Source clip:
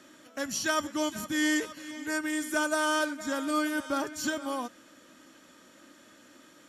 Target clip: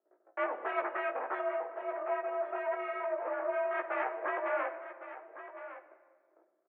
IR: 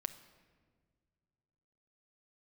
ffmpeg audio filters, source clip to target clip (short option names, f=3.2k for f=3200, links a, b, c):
-filter_complex "[0:a]aemphasis=mode=reproduction:type=riaa,agate=range=-20dB:threshold=-49dB:ratio=16:detection=peak,tiltshelf=f=730:g=6,alimiter=limit=-20.5dB:level=0:latency=1:release=186,asettb=1/sr,asplit=3[a][b][c];[a]atrim=end=1.394[d];[b]atrim=start=1.39:end=3.71,asetpts=PTS-STARTPTS,afade=t=in:d=0.004:c=qsin,afade=t=out:st=2.316:d=0.004:c=qsin,acompressor=threshold=-30dB:ratio=5[e];[c]atrim=start=3.706[f];[d][e]acrossfade=d=0.004:c1=hsin:c2=qsin[g];[g][f]acrossfade=d=0.004:c1=qsin:c2=hsin,aeval=exprs='val(0)+0.00126*(sin(2*PI*60*n/s)+sin(2*PI*2*60*n/s)/2+sin(2*PI*3*60*n/s)/3+sin(2*PI*4*60*n/s)/4+sin(2*PI*5*60*n/s)/5)':c=same,adynamicsmooth=sensitivity=3.5:basefreq=750,aeval=exprs='0.0944*(cos(1*acos(clip(val(0)/0.0944,-1,1)))-cos(1*PI/2))+0.0335*(cos(6*acos(clip(val(0)/0.0944,-1,1)))-cos(6*PI/2))':c=same,flanger=delay=15:depth=3.6:speed=1.5,aecho=1:1:1109:0.224[h];[1:a]atrim=start_sample=2205,asetrate=40131,aresample=44100[i];[h][i]afir=irnorm=-1:irlink=0,highpass=f=500:t=q:w=0.5412,highpass=f=500:t=q:w=1.307,lowpass=f=2.2k:t=q:w=0.5176,lowpass=f=2.2k:t=q:w=0.7071,lowpass=f=2.2k:t=q:w=1.932,afreqshift=58,volume=4dB"